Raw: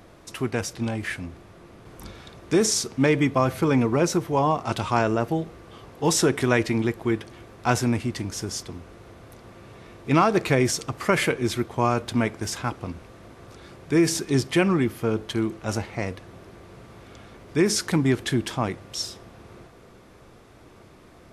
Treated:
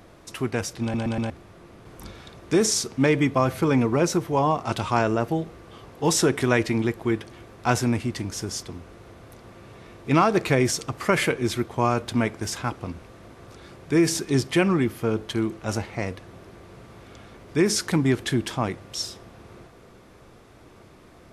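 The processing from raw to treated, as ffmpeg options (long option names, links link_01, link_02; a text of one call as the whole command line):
ffmpeg -i in.wav -filter_complex "[0:a]asplit=5[link_01][link_02][link_03][link_04][link_05];[link_01]atrim=end=0.942[link_06];[link_02]atrim=start=0.818:end=0.942[link_07];[link_03]atrim=start=0.818:end=0.942[link_08];[link_04]atrim=start=0.818:end=0.942[link_09];[link_05]atrim=start=1.298[link_10];[link_06][link_07]acrossfade=duration=0.004:curve1=hsin:curve2=hsin[link_11];[link_11][link_08]acrossfade=duration=0.004:curve1=hsin:curve2=hsin[link_12];[link_12][link_09]acrossfade=duration=0.004:curve1=hsin:curve2=hsin[link_13];[link_13][link_10]acrossfade=duration=0.004:curve1=hsin:curve2=hsin" out.wav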